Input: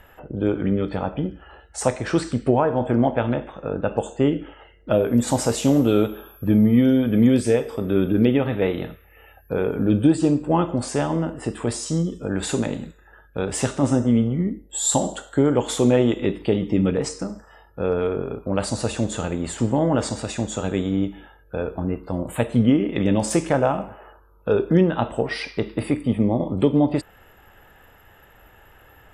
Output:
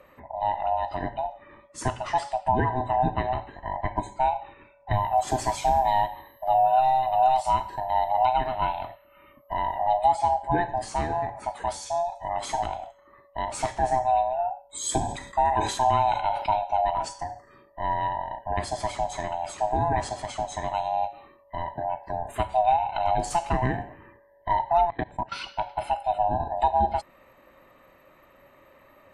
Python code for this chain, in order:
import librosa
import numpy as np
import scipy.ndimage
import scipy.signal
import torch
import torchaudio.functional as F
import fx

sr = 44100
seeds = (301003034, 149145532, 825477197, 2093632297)

y = fx.band_swap(x, sr, width_hz=500)
y = fx.level_steps(y, sr, step_db=22, at=(24.85, 25.32))
y = fx.high_shelf(y, sr, hz=7500.0, db=-8.0)
y = fx.sustainer(y, sr, db_per_s=73.0, at=(15.01, 16.6))
y = y * librosa.db_to_amplitude(-4.5)